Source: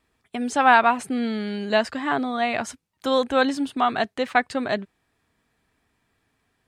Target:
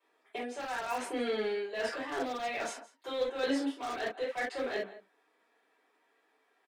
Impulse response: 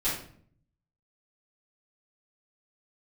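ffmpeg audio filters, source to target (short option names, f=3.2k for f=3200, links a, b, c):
-filter_complex "[0:a]highpass=f=390:w=0.5412,highpass=f=390:w=1.3066,areverse,acompressor=threshold=-28dB:ratio=16,areverse,highshelf=f=2.5k:g=-10.5,aecho=1:1:166:0.112[a];[1:a]atrim=start_sample=2205,atrim=end_sample=3528[b];[a][b]afir=irnorm=-1:irlink=0,acrossover=split=660|1300[c][d][e];[d]aeval=exprs='0.01*(abs(mod(val(0)/0.01+3,4)-2)-1)':c=same[f];[c][f][e]amix=inputs=3:normalize=0,volume=-4.5dB"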